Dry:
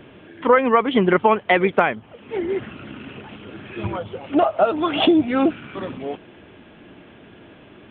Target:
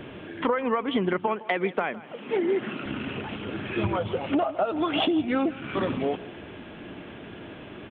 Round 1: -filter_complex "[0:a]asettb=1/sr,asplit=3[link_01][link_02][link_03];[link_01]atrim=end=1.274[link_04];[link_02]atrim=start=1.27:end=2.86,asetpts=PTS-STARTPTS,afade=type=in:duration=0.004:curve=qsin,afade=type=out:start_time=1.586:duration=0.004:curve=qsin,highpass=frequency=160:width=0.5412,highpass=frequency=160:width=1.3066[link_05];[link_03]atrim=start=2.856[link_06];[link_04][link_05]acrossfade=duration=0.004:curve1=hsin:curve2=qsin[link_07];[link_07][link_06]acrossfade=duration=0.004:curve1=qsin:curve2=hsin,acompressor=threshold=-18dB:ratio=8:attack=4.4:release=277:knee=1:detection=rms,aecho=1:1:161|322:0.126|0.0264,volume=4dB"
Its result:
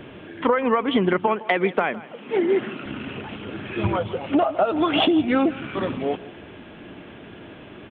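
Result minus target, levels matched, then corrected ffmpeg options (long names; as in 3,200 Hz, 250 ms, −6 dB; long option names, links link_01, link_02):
downward compressor: peak gain reduction −5 dB
-filter_complex "[0:a]asettb=1/sr,asplit=3[link_01][link_02][link_03];[link_01]atrim=end=1.274[link_04];[link_02]atrim=start=1.27:end=2.86,asetpts=PTS-STARTPTS,afade=type=in:duration=0.004:curve=qsin,afade=type=out:start_time=1.586:duration=0.004:curve=qsin,highpass=frequency=160:width=0.5412,highpass=frequency=160:width=1.3066[link_05];[link_03]atrim=start=2.856[link_06];[link_04][link_05]acrossfade=duration=0.004:curve1=hsin:curve2=qsin[link_07];[link_07][link_06]acrossfade=duration=0.004:curve1=qsin:curve2=hsin,acompressor=threshold=-24dB:ratio=8:attack=4.4:release=277:knee=1:detection=rms,aecho=1:1:161|322:0.126|0.0264,volume=4dB"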